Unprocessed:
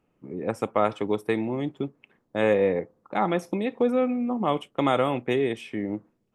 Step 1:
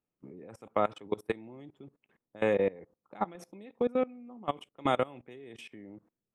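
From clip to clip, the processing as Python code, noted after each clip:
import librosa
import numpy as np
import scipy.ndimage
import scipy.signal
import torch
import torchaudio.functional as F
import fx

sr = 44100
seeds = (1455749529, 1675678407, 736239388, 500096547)

y = fx.level_steps(x, sr, step_db=22)
y = y * librosa.db_to_amplitude(-3.5)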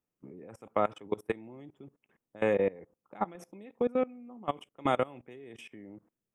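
y = fx.peak_eq(x, sr, hz=4200.0, db=-12.0, octaves=0.32)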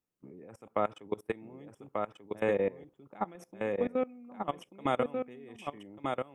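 y = x + 10.0 ** (-4.0 / 20.0) * np.pad(x, (int(1189 * sr / 1000.0), 0))[:len(x)]
y = y * librosa.db_to_amplitude(-2.0)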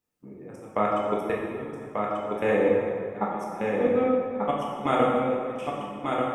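y = fx.rev_plate(x, sr, seeds[0], rt60_s=2.2, hf_ratio=0.6, predelay_ms=0, drr_db=-4.5)
y = y * librosa.db_to_amplitude(3.0)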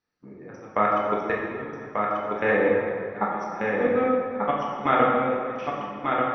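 y = scipy.signal.sosfilt(scipy.signal.cheby1(6, 9, 6000.0, 'lowpass', fs=sr, output='sos'), x)
y = y * librosa.db_to_amplitude(8.5)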